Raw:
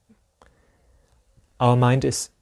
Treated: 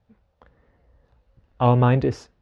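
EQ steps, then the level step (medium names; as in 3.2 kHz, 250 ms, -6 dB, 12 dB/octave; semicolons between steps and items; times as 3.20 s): distance through air 300 m; +1.0 dB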